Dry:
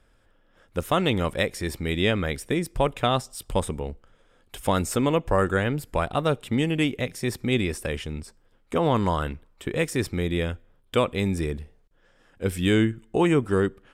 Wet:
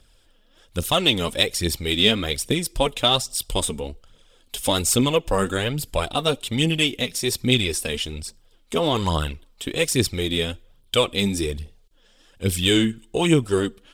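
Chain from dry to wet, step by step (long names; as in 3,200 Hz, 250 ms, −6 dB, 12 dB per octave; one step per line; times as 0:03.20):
high shelf with overshoot 2,500 Hz +9.5 dB, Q 1.5
phase shifter 1.2 Hz, delay 4.9 ms, feedback 50%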